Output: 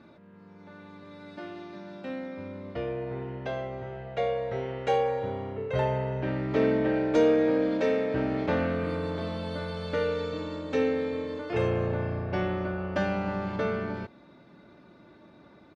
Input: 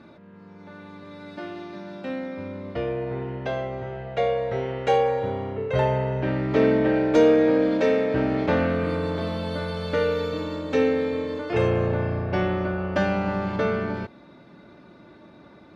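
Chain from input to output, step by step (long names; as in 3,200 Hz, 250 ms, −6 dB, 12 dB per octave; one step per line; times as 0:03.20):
downsampling to 22,050 Hz
level −5 dB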